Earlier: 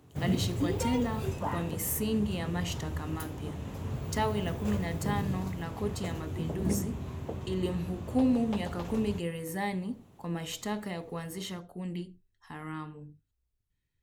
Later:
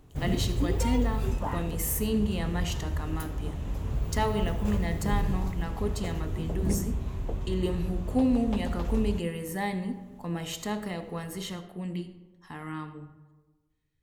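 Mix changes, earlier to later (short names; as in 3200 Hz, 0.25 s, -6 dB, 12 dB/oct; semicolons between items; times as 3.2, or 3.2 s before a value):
speech: send on; background: remove HPF 85 Hz 24 dB/oct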